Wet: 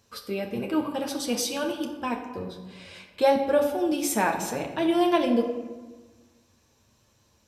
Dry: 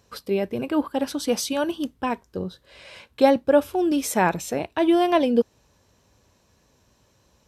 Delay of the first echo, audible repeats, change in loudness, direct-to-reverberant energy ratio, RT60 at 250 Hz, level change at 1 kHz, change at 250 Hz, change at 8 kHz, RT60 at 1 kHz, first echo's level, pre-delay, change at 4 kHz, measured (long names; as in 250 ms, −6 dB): no echo audible, no echo audible, −3.0 dB, 1.0 dB, 1.6 s, −3.0 dB, −3.5 dB, 0.0 dB, 1.3 s, no echo audible, 9 ms, −1.0 dB